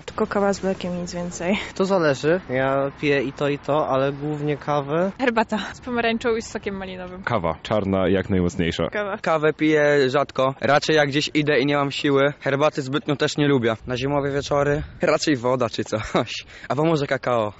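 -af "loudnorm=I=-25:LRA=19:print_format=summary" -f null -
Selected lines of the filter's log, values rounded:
Input Integrated:    -22.0 LUFS
Input True Peak:      -8.0 dBTP
Input LRA:             3.2 LU
Input Threshold:     -32.0 LUFS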